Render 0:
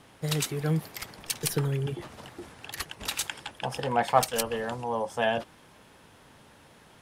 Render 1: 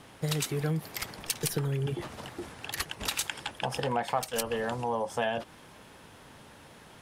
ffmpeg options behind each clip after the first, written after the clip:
ffmpeg -i in.wav -af "acompressor=threshold=-30dB:ratio=4,volume=3dB" out.wav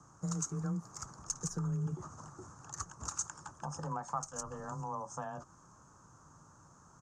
ffmpeg -i in.wav -af "firequalizer=gain_entry='entry(140,0);entry(200,-8);entry(300,-7);entry(430,-12);entry(660,-10);entry(1200,3);entry(2000,-26);entry(3400,-29);entry(6500,8);entry(11000,-30)':delay=0.05:min_phase=1,afreqshift=18,volume=-3.5dB" out.wav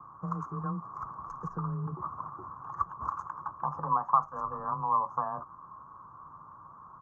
ffmpeg -i in.wav -af "lowpass=frequency=1100:width_type=q:width=9.6" out.wav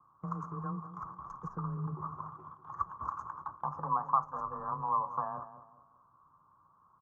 ffmpeg -i in.wav -filter_complex "[0:a]agate=range=-12dB:threshold=-42dB:ratio=16:detection=peak,asplit=2[link_01][link_02];[link_02]adelay=199,lowpass=frequency=1200:poles=1,volume=-11dB,asplit=2[link_03][link_04];[link_04]adelay=199,lowpass=frequency=1200:poles=1,volume=0.37,asplit=2[link_05][link_06];[link_06]adelay=199,lowpass=frequency=1200:poles=1,volume=0.37,asplit=2[link_07][link_08];[link_08]adelay=199,lowpass=frequency=1200:poles=1,volume=0.37[link_09];[link_01][link_03][link_05][link_07][link_09]amix=inputs=5:normalize=0,volume=-3.5dB" out.wav

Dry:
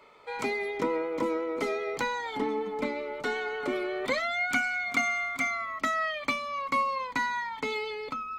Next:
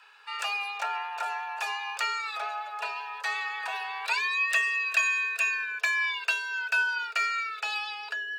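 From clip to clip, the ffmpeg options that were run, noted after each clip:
ffmpeg -i in.wav -af "equalizer=frequency=230:width_type=o:width=2.2:gain=-15,afreqshift=400,volume=3.5dB" out.wav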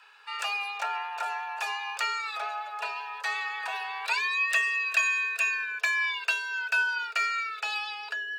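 ffmpeg -i in.wav -af anull out.wav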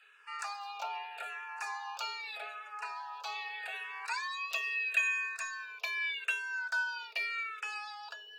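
ffmpeg -i in.wav -filter_complex "[0:a]asplit=2[link_01][link_02];[link_02]afreqshift=-0.81[link_03];[link_01][link_03]amix=inputs=2:normalize=1,volume=-4dB" out.wav

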